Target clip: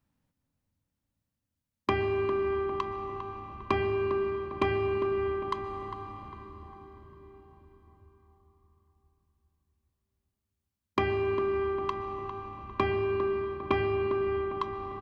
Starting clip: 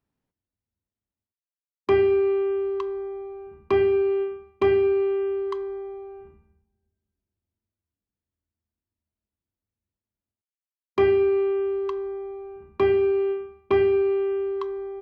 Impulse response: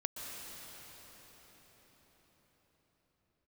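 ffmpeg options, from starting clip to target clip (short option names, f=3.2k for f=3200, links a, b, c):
-filter_complex "[0:a]acompressor=threshold=-23dB:ratio=3,equalizer=f=400:t=o:w=0.32:g=-12,bandreject=f=700:w=15,asplit=2[a][b];[b]adelay=402,lowpass=f=2.1k:p=1,volume=-8.5dB,asplit=2[c][d];[d]adelay=402,lowpass=f=2.1k:p=1,volume=0.52,asplit=2[e][f];[f]adelay=402,lowpass=f=2.1k:p=1,volume=0.52,asplit=2[g][h];[h]adelay=402,lowpass=f=2.1k:p=1,volume=0.52,asplit=2[i][j];[j]adelay=402,lowpass=f=2.1k:p=1,volume=0.52,asplit=2[k][l];[l]adelay=402,lowpass=f=2.1k:p=1,volume=0.52[m];[a][c][e][g][i][k][m]amix=inputs=7:normalize=0,asplit=2[n][o];[1:a]atrim=start_sample=2205,lowshelf=f=440:g=8[p];[o][p]afir=irnorm=-1:irlink=0,volume=-5dB[q];[n][q]amix=inputs=2:normalize=0"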